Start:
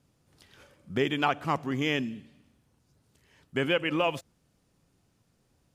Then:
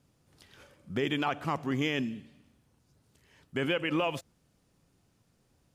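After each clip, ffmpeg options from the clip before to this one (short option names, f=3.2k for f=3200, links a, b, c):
-af "alimiter=limit=-19dB:level=0:latency=1:release=31"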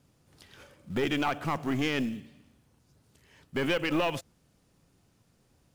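-filter_complex "[0:a]asplit=2[a][b];[b]acrusher=bits=4:mode=log:mix=0:aa=0.000001,volume=-4dB[c];[a][c]amix=inputs=2:normalize=0,aeval=exprs='(tanh(8.91*val(0)+0.4)-tanh(0.4))/8.91':c=same"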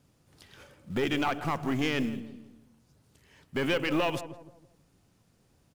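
-filter_complex "[0:a]asplit=2[a][b];[b]adelay=163,lowpass=f=930:p=1,volume=-10.5dB,asplit=2[c][d];[d]adelay=163,lowpass=f=930:p=1,volume=0.42,asplit=2[e][f];[f]adelay=163,lowpass=f=930:p=1,volume=0.42,asplit=2[g][h];[h]adelay=163,lowpass=f=930:p=1,volume=0.42[i];[a][c][e][g][i]amix=inputs=5:normalize=0"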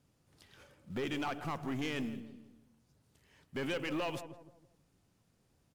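-af "asoftclip=type=tanh:threshold=-22dB,volume=-6.5dB" -ar 48000 -c:a aac -b:a 96k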